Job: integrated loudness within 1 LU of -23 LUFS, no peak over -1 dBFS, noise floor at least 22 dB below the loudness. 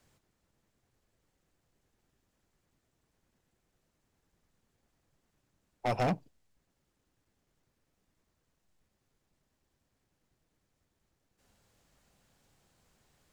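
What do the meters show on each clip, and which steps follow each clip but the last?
clipped 0.3%; flat tops at -25.5 dBFS; loudness -33.5 LUFS; peak -25.5 dBFS; loudness target -23.0 LUFS
-> clip repair -25.5 dBFS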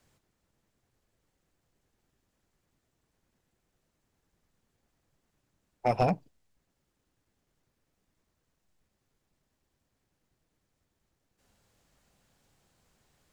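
clipped 0.0%; loudness -30.0 LUFS; peak -16.5 dBFS; loudness target -23.0 LUFS
-> gain +7 dB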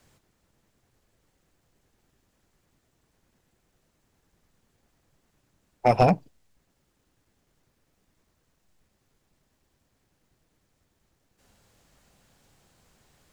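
loudness -23.0 LUFS; peak -9.5 dBFS; noise floor -73 dBFS

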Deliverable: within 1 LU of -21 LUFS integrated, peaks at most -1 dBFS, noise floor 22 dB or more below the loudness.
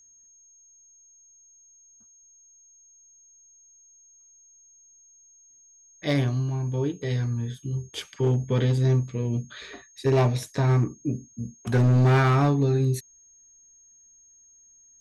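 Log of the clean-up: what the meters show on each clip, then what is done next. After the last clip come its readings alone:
clipped 1.2%; flat tops at -15.5 dBFS; steady tone 6500 Hz; tone level -53 dBFS; loudness -24.5 LUFS; peak -15.5 dBFS; loudness target -21.0 LUFS
-> clip repair -15.5 dBFS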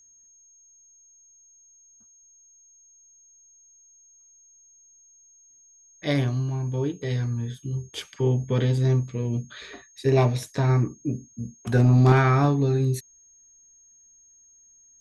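clipped 0.0%; steady tone 6500 Hz; tone level -53 dBFS
-> notch 6500 Hz, Q 30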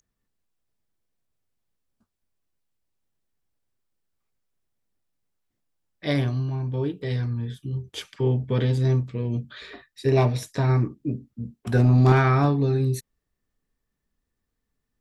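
steady tone none; loudness -23.5 LUFS; peak -6.5 dBFS; loudness target -21.0 LUFS
-> gain +2.5 dB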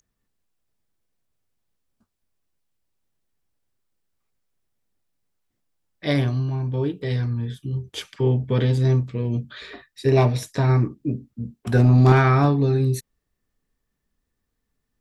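loudness -21.0 LUFS; peak -4.0 dBFS; noise floor -79 dBFS

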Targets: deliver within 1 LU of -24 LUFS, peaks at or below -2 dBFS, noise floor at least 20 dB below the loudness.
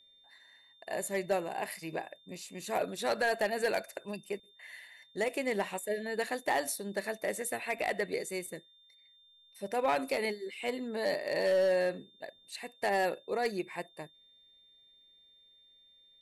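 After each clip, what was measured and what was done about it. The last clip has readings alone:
clipped 0.4%; flat tops at -22.5 dBFS; steady tone 3600 Hz; tone level -60 dBFS; loudness -34.0 LUFS; peak -22.5 dBFS; loudness target -24.0 LUFS
-> clip repair -22.5 dBFS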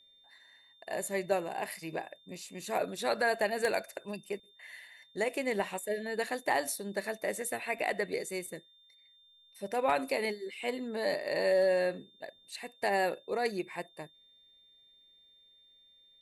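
clipped 0.0%; steady tone 3600 Hz; tone level -60 dBFS
-> notch 3600 Hz, Q 30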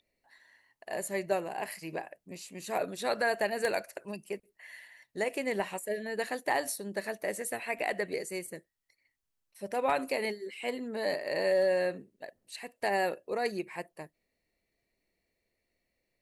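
steady tone none; loudness -33.0 LUFS; peak -13.5 dBFS; loudness target -24.0 LUFS
-> gain +9 dB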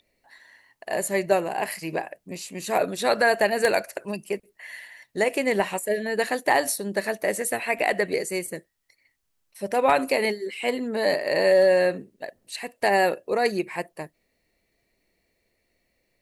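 loudness -24.0 LUFS; peak -4.5 dBFS; noise floor -73 dBFS

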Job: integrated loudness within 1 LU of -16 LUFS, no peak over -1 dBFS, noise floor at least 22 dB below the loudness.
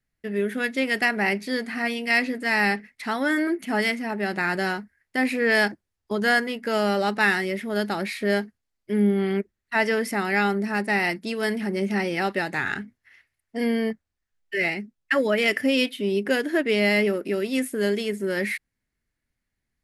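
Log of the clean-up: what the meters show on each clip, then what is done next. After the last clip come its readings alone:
loudness -24.5 LUFS; peak -8.5 dBFS; loudness target -16.0 LUFS
-> gain +8.5 dB; limiter -1 dBFS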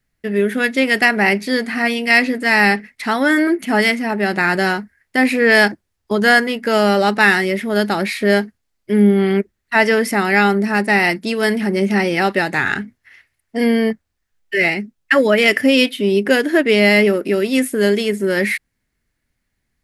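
loudness -16.0 LUFS; peak -1.0 dBFS; noise floor -73 dBFS

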